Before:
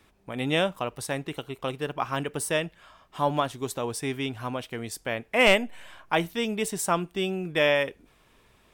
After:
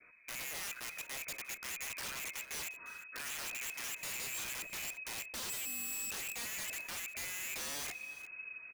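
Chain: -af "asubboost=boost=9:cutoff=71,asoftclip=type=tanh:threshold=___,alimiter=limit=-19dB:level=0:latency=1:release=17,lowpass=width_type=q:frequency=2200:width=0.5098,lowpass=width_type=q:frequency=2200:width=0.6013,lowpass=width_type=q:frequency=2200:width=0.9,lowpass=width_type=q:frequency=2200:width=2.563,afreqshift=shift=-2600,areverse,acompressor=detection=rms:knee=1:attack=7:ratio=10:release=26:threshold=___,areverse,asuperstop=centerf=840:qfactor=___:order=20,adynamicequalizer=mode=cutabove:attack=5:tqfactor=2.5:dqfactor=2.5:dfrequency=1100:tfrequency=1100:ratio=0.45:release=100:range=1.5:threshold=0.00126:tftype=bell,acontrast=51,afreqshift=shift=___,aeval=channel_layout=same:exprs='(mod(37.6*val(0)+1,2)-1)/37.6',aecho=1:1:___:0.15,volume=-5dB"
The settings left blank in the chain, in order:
-14dB, -37dB, 4.5, -20, 352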